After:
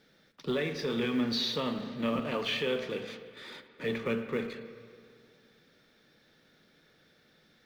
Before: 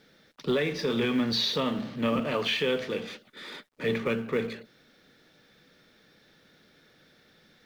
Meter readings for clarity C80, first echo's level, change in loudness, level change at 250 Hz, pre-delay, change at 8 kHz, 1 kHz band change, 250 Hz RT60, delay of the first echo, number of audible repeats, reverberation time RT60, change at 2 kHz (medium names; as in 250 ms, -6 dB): 11.5 dB, no echo, -4.0 dB, -3.5 dB, 9 ms, -4.5 dB, -4.0 dB, 2.4 s, no echo, no echo, 2.3 s, -4.0 dB